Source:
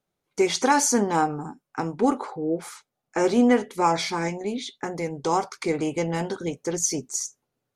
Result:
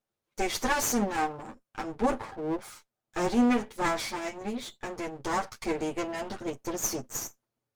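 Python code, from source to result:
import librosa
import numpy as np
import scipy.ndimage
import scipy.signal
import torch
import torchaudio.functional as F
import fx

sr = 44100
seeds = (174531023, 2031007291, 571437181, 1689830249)

y = fx.lower_of_two(x, sr, delay_ms=8.9)
y = y * 10.0 ** (-4.5 / 20.0)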